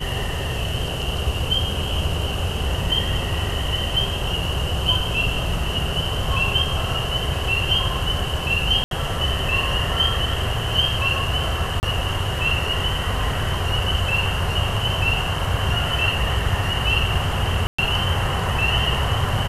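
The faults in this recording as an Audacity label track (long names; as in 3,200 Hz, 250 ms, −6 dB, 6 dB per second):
8.840000	8.910000	drop-out 72 ms
11.800000	11.830000	drop-out 29 ms
17.670000	17.790000	drop-out 115 ms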